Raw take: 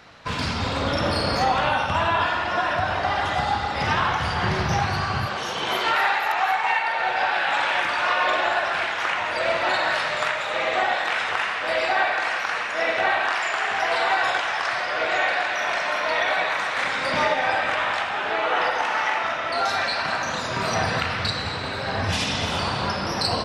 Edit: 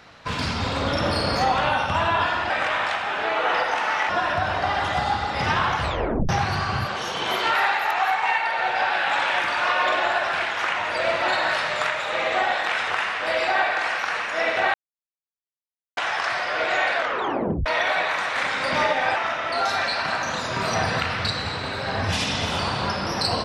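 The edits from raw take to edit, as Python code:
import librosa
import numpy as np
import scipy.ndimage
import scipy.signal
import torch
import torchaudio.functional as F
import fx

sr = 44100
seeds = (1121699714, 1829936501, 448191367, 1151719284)

y = fx.edit(x, sr, fx.tape_stop(start_s=4.2, length_s=0.5),
    fx.silence(start_s=13.15, length_s=1.23),
    fx.tape_stop(start_s=15.35, length_s=0.72),
    fx.move(start_s=17.57, length_s=1.59, to_s=2.5), tone=tone)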